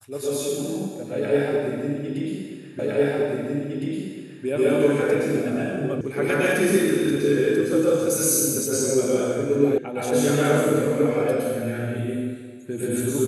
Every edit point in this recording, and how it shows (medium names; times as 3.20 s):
2.79 s: repeat of the last 1.66 s
6.01 s: sound stops dead
9.78 s: sound stops dead